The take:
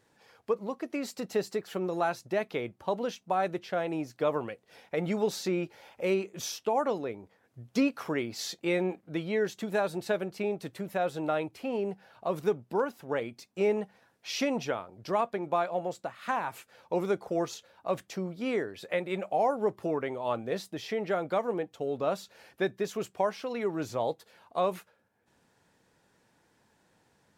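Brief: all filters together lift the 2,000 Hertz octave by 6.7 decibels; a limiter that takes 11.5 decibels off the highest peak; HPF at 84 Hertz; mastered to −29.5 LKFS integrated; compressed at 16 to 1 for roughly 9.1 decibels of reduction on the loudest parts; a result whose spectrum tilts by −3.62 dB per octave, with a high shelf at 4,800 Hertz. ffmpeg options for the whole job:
ffmpeg -i in.wav -af "highpass=84,equalizer=frequency=2000:width_type=o:gain=7,highshelf=frequency=4800:gain=8,acompressor=threshold=-30dB:ratio=16,volume=10dB,alimiter=limit=-18dB:level=0:latency=1" out.wav

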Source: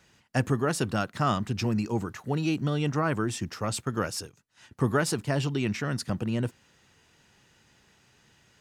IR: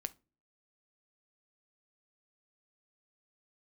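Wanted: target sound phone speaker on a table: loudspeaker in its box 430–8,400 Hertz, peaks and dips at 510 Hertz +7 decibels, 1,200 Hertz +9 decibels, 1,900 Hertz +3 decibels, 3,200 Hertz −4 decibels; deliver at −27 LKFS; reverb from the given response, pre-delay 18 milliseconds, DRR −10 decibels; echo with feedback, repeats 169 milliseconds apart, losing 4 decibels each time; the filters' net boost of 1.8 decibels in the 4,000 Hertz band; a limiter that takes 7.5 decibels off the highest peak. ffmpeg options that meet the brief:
-filter_complex "[0:a]equalizer=frequency=4000:width_type=o:gain=4,alimiter=limit=-17.5dB:level=0:latency=1,aecho=1:1:169|338|507|676|845|1014|1183|1352|1521:0.631|0.398|0.25|0.158|0.0994|0.0626|0.0394|0.0249|0.0157,asplit=2[link_01][link_02];[1:a]atrim=start_sample=2205,adelay=18[link_03];[link_02][link_03]afir=irnorm=-1:irlink=0,volume=12dB[link_04];[link_01][link_04]amix=inputs=2:normalize=0,highpass=frequency=430:width=0.5412,highpass=frequency=430:width=1.3066,equalizer=frequency=510:width_type=q:width=4:gain=7,equalizer=frequency=1200:width_type=q:width=4:gain=9,equalizer=frequency=1900:width_type=q:width=4:gain=3,equalizer=frequency=3200:width_type=q:width=4:gain=-4,lowpass=frequency=8400:width=0.5412,lowpass=frequency=8400:width=1.3066,volume=-8.5dB"

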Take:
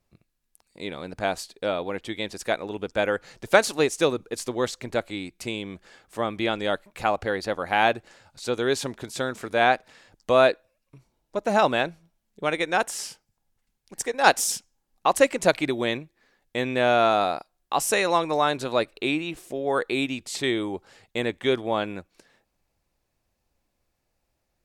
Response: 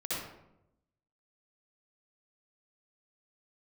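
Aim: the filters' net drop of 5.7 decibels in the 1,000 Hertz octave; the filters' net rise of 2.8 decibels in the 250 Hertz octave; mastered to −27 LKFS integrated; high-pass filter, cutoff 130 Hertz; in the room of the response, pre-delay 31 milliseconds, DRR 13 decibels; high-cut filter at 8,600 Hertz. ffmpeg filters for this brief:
-filter_complex "[0:a]highpass=130,lowpass=8600,equalizer=frequency=250:width_type=o:gain=4.5,equalizer=frequency=1000:width_type=o:gain=-9,asplit=2[link_01][link_02];[1:a]atrim=start_sample=2205,adelay=31[link_03];[link_02][link_03]afir=irnorm=-1:irlink=0,volume=-17.5dB[link_04];[link_01][link_04]amix=inputs=2:normalize=0,volume=-0.5dB"

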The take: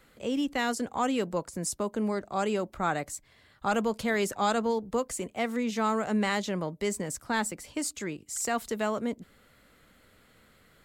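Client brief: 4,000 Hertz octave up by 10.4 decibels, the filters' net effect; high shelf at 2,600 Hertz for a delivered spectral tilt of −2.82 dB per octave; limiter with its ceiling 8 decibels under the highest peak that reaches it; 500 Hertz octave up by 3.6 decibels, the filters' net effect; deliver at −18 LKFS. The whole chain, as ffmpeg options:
ffmpeg -i in.wav -af "equalizer=frequency=500:width_type=o:gain=4,highshelf=frequency=2600:gain=5,equalizer=frequency=4000:width_type=o:gain=9,volume=11dB,alimiter=limit=-6.5dB:level=0:latency=1" out.wav

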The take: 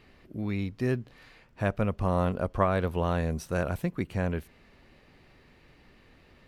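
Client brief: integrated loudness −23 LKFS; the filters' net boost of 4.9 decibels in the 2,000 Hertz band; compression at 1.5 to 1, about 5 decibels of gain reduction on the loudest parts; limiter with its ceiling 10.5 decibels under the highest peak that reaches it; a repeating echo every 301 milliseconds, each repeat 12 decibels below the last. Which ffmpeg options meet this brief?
ffmpeg -i in.wav -af "equalizer=frequency=2000:width_type=o:gain=6.5,acompressor=threshold=-32dB:ratio=1.5,alimiter=level_in=0.5dB:limit=-24dB:level=0:latency=1,volume=-0.5dB,aecho=1:1:301|602|903:0.251|0.0628|0.0157,volume=13dB" out.wav

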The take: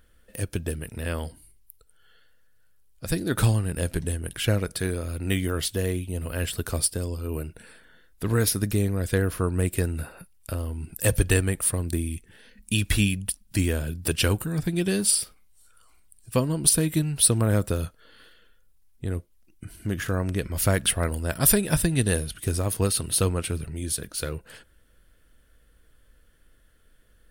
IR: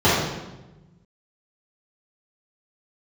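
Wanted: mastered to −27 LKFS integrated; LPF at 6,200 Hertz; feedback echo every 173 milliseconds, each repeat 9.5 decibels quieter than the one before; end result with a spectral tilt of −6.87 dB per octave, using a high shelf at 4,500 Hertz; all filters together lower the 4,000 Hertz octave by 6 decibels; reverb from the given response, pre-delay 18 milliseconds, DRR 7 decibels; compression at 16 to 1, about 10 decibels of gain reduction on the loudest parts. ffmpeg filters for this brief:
-filter_complex "[0:a]lowpass=6200,equalizer=frequency=4000:width_type=o:gain=-3,highshelf=frequency=4500:gain=-8,acompressor=threshold=-26dB:ratio=16,aecho=1:1:173|346|519|692:0.335|0.111|0.0365|0.012,asplit=2[link_01][link_02];[1:a]atrim=start_sample=2205,adelay=18[link_03];[link_02][link_03]afir=irnorm=-1:irlink=0,volume=-30.5dB[link_04];[link_01][link_04]amix=inputs=2:normalize=0,volume=3dB"

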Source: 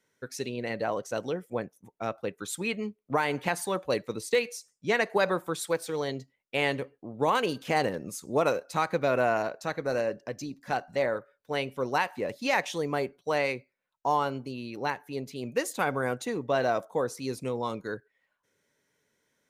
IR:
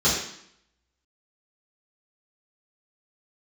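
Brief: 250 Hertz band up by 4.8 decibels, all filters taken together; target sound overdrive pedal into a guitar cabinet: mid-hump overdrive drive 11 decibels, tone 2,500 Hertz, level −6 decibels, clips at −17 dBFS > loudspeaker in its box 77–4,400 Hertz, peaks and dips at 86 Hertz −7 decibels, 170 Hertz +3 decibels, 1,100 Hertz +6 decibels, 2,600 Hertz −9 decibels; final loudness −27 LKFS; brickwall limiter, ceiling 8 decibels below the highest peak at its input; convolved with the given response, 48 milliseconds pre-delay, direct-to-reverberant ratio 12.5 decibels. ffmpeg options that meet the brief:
-filter_complex "[0:a]equalizer=frequency=250:width_type=o:gain=5.5,alimiter=limit=-20dB:level=0:latency=1,asplit=2[link_01][link_02];[1:a]atrim=start_sample=2205,adelay=48[link_03];[link_02][link_03]afir=irnorm=-1:irlink=0,volume=-28.5dB[link_04];[link_01][link_04]amix=inputs=2:normalize=0,asplit=2[link_05][link_06];[link_06]highpass=frequency=720:poles=1,volume=11dB,asoftclip=type=tanh:threshold=-17dB[link_07];[link_05][link_07]amix=inputs=2:normalize=0,lowpass=frequency=2500:poles=1,volume=-6dB,highpass=77,equalizer=frequency=86:width_type=q:width=4:gain=-7,equalizer=frequency=170:width_type=q:width=4:gain=3,equalizer=frequency=1100:width_type=q:width=4:gain=6,equalizer=frequency=2600:width_type=q:width=4:gain=-9,lowpass=frequency=4400:width=0.5412,lowpass=frequency=4400:width=1.3066,volume=3.5dB"

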